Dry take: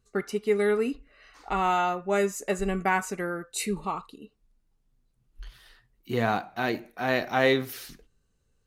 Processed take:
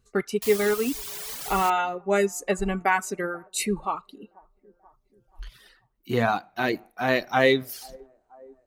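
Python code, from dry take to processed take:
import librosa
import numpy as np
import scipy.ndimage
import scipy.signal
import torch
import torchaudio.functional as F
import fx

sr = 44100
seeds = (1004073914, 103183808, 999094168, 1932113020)

y = fx.echo_wet_bandpass(x, sr, ms=484, feedback_pct=44, hz=510.0, wet_db=-19)
y = fx.quant_dither(y, sr, seeds[0], bits=6, dither='triangular', at=(0.42, 1.7))
y = fx.dereverb_blind(y, sr, rt60_s=1.4)
y = y * 10.0 ** (3.5 / 20.0)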